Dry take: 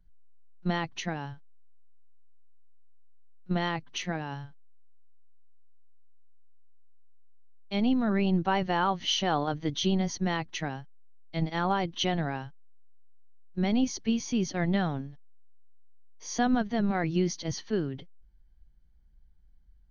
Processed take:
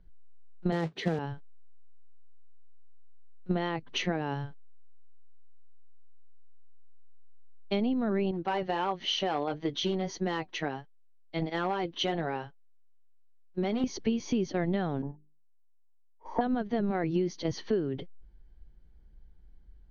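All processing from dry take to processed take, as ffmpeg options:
-filter_complex "[0:a]asettb=1/sr,asplit=3[a][b][c];[a]atrim=end=0.724[d];[b]atrim=start=0.72:end=1.19,asetpts=PTS-STARTPTS,afade=t=in:d=0.004:c=qsin,afade=t=out:st=0.466:d=0.004:c=qsin,highpass=140,equalizer=f=160:t=q:w=4:g=10,equalizer=f=450:t=q:w=4:g=9,equalizer=f=1k:t=q:w=4:g=-7,equalizer=f=2.7k:t=q:w=4:g=-10,lowpass=f=4.7k:w=0.5412,lowpass=f=4.7k:w=1.3066,acrusher=bits=3:mode=log:mix=0:aa=0.000001[e];[c]atrim=start=1.186[f];[d][e]acrossfade=d=0.004:c1=hsin:c2=qsin[g];[g][f]acrossfade=d=0.004:c1=qsin:c2=hsin,asettb=1/sr,asplit=3[h][i][j];[h]atrim=end=8.314[k];[i]atrim=start=8.31:end=13.84,asetpts=PTS-STARTPTS,afade=t=in:d=0.004:c=qsin,afade=t=out:st=5.526:d=0.004:c=qsin,asoftclip=type=hard:threshold=-19dB,lowshelf=f=240:g=-9.5,flanger=delay=5.1:depth=2:regen=-60:speed=1.5:shape=sinusoidal[l];[j]atrim=start=13.836[m];[k][l]acrossfade=d=0.004:c1=hsin:c2=qsin[n];[n][m]acrossfade=d=0.004:c1=qsin:c2=hsin,asettb=1/sr,asplit=3[o][p][q];[o]atrim=end=15.024[r];[p]atrim=start=15.02:end=16.41,asetpts=PTS-STARTPTS,afade=t=in:d=0.004:c=qsin,afade=t=out:st=1.386:d=0.004:c=qsin,agate=range=-17dB:threshold=-44dB:ratio=16:release=100:detection=peak,lowpass=f=910:t=q:w=11,bandreject=f=50:t=h:w=6,bandreject=f=100:t=h:w=6,bandreject=f=150:t=h:w=6,bandreject=f=200:t=h:w=6,bandreject=f=250:t=h:w=6,bandreject=f=300:t=h:w=6,bandreject=f=350:t=h:w=6,bandreject=f=400:t=h:w=6[s];[q]atrim=start=16.406[t];[r][s]acrossfade=d=0.004:c1=hsin:c2=qsin[u];[u][t]acrossfade=d=0.004:c1=qsin:c2=hsin,lowpass=4.4k,equalizer=f=420:t=o:w=1.2:g=8.5,acompressor=threshold=-31dB:ratio=6,volume=5dB"

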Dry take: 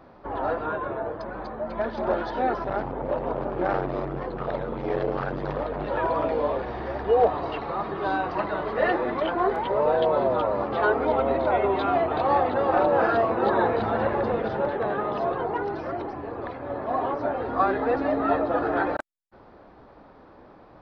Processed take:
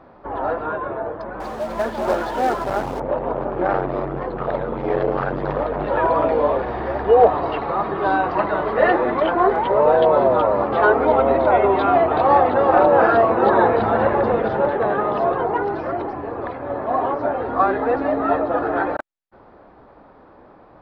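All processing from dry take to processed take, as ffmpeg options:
-filter_complex "[0:a]asettb=1/sr,asplit=3[a][b][c];[a]atrim=end=1.404[d];[b]atrim=start=1.4:end=3,asetpts=PTS-STARTPTS,afade=t=in:d=0.004:c=qsin,afade=t=out:st=1.596:d=0.004:c=qsin,aeval=exprs='val(0)+0.5*0.00944*sgn(val(0))':c=same,highshelf=f=3.7k:g=5.5,acrusher=bits=3:mode=log:mix=0:aa=0.000001[e];[c]atrim=start=2.996[f];[d][e]acrossfade=d=0.004:c1=hsin:c2=qsin[g];[g][f]acrossfade=d=0.004:c1=qsin:c2=hsin,lowpass=f=3.2k:p=1,equalizer=f=960:t=o:w=2.9:g=3,dynaudnorm=f=270:g=31:m=5dB,volume=1.5dB"

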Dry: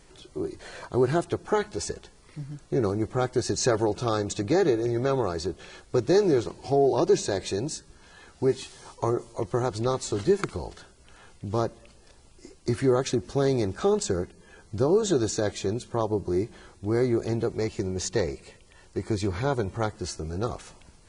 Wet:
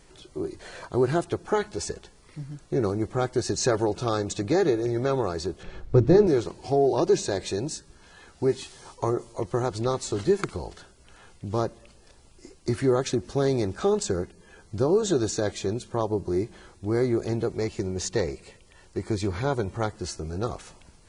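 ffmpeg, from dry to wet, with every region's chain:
-filter_complex "[0:a]asettb=1/sr,asplit=3[a][b][c];[a]atrim=end=5.634[d];[b]atrim=start=5.63:end=6.27,asetpts=PTS-STARTPTS,afade=t=in:d=0.004:c=qsin,afade=t=out:st=0.636:d=0.004:c=qsin,aemphasis=mode=reproduction:type=riaa,bandreject=f=50:t=h:w=6,bandreject=f=100:t=h:w=6,bandreject=f=150:t=h:w=6,bandreject=f=200:t=h:w=6,bandreject=f=250:t=h:w=6,bandreject=f=300:t=h:w=6,bandreject=f=350:t=h:w=6,bandreject=f=400:t=h:w=6[e];[c]atrim=start=6.266[f];[d][e]acrossfade=d=0.004:c1=hsin:c2=qsin[g];[g][f]acrossfade=d=0.004:c1=qsin:c2=hsin"

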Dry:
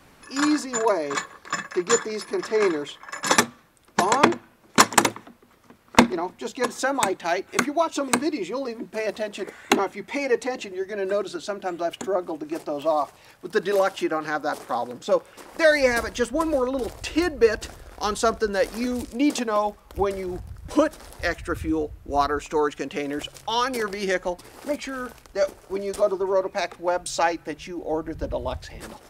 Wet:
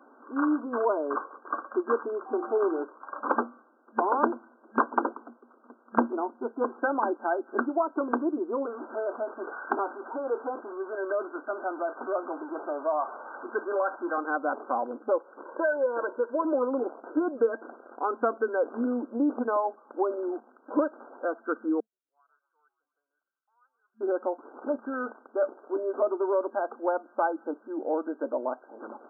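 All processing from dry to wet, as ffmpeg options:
-filter_complex "[0:a]asettb=1/sr,asplit=3[a][b][c];[a]atrim=end=2.264[d];[b]atrim=start=2.26:end=2.83,asetpts=PTS-STARTPTS,afade=t=in:d=0.004:c=qsin,afade=t=out:st=0.566:d=0.004:c=qsin,bandreject=f=50:t=h:w=6,bandreject=f=100:t=h:w=6,bandreject=f=150:t=h:w=6,bandreject=f=200:t=h:w=6,bandreject=f=250:t=h:w=6,bandreject=f=300:t=h:w=6,bandreject=f=350:t=h:w=6,aeval=exprs='val(0)+0.01*sin(2*PI*770*n/s)':c=same[e];[c]atrim=start=2.826[f];[d][e]acrossfade=d=0.004:c1=hsin:c2=qsin[g];[g][f]acrossfade=d=0.004:c1=qsin:c2=hsin,asettb=1/sr,asplit=3[h][i][j];[h]atrim=end=8.664[k];[i]atrim=start=8.66:end=14.18,asetpts=PTS-STARTPTS,afade=t=in:d=0.004:c=qsin,afade=t=out:st=5.516:d=0.004:c=qsin,aeval=exprs='val(0)+0.5*0.0376*sgn(val(0))':c=same,highpass=f=950:p=1,asplit=2[l][m];[m]adelay=23,volume=-13.5dB[n];[l][n]amix=inputs=2:normalize=0,atrim=end_sample=243432[o];[j]atrim=start=14.176[p];[k][o]acrossfade=d=0.004:c1=hsin:c2=qsin[q];[q][p]acrossfade=d=0.004:c1=qsin:c2=hsin,asettb=1/sr,asplit=3[r][s][t];[r]atrim=end=15.434[u];[s]atrim=start=15.43:end=16.45,asetpts=PTS-STARTPTS,afade=t=in:d=0.004:c=qsin,afade=t=out:st=1.016:d=0.004:c=qsin,aecho=1:1:2:0.7,atrim=end_sample=44982,acompressor=threshold=-22dB:ratio=2:attack=3.2:release=140:knee=1:detection=peak[v];[t]atrim=start=16.446[w];[u][v]acrossfade=d=0.004:c1=hsin:c2=qsin[x];[x][w]acrossfade=d=0.004:c1=qsin:c2=hsin,asettb=1/sr,asplit=3[y][z][aa];[y]atrim=end=21.804[ab];[z]atrim=start=21.8:end=24.01,asetpts=PTS-STARTPTS,afade=t=in:d=0.004:c=qsin,afade=t=out:st=2.206:d=0.004:c=qsin,asuperpass=centerf=5500:order=4:qfactor=2.7,asplit=5[ac][ad][ae][af][ag];[ad]adelay=124,afreqshift=-77,volume=-15dB[ah];[ae]adelay=248,afreqshift=-154,volume=-21.6dB[ai];[af]adelay=372,afreqshift=-231,volume=-28.1dB[aj];[ag]adelay=496,afreqshift=-308,volume=-34.7dB[ak];[ac][ah][ai][aj][ak]amix=inputs=5:normalize=0,atrim=end_sample=97461[al];[aa]atrim=start=24.006[am];[ab][al]acrossfade=d=0.004:c1=hsin:c2=qsin[an];[an][am]acrossfade=d=0.004:c1=qsin:c2=hsin,afftfilt=real='re*between(b*sr/4096,220,1600)':imag='im*between(b*sr/4096,220,1600)':win_size=4096:overlap=0.75,acompressor=threshold=-25dB:ratio=2"

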